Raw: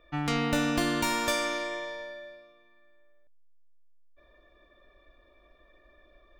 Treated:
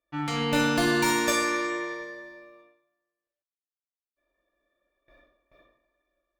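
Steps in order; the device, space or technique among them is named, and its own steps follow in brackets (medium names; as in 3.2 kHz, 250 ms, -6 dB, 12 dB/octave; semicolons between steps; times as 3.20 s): gate with hold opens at -48 dBFS; far-field microphone of a smart speaker (reverberation RT60 0.75 s, pre-delay 3 ms, DRR -2 dB; high-pass 130 Hz 6 dB/octave; level rider gain up to 6 dB; trim -4.5 dB; Opus 48 kbps 48 kHz)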